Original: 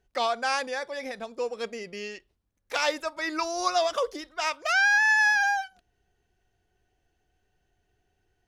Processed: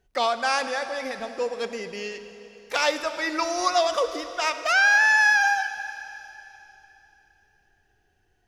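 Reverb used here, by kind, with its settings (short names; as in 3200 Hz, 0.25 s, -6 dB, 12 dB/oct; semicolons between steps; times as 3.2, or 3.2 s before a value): digital reverb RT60 3.3 s, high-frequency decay 1×, pre-delay 5 ms, DRR 9.5 dB; gain +3 dB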